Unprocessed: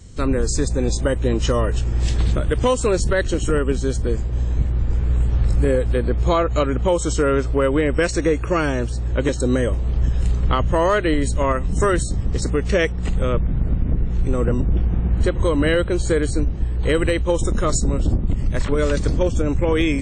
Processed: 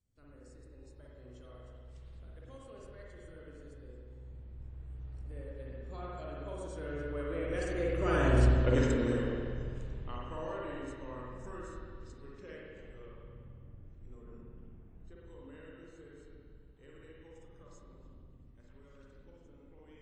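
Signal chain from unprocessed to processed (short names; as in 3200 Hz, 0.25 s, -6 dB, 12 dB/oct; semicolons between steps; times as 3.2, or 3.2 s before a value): Doppler pass-by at 8.48, 20 m/s, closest 3.6 m; spring tank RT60 2 s, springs 48/56 ms, chirp 45 ms, DRR -5 dB; gain -8 dB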